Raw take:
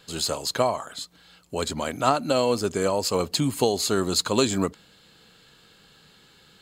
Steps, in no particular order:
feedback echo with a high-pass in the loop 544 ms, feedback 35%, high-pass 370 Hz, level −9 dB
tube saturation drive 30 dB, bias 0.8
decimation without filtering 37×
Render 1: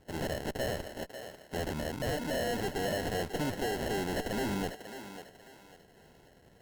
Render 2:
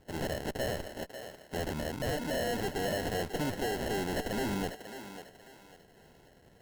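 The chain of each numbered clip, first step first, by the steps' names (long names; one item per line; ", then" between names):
decimation without filtering, then tube saturation, then feedback echo with a high-pass in the loop
tube saturation, then decimation without filtering, then feedback echo with a high-pass in the loop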